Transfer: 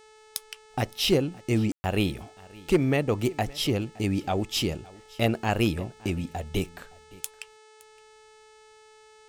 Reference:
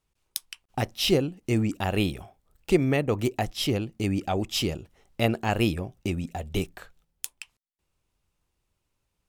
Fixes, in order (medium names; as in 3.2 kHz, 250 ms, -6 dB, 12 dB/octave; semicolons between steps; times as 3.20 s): clip repair -13 dBFS; de-hum 433.4 Hz, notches 22; room tone fill 1.72–1.84 s; inverse comb 566 ms -22.5 dB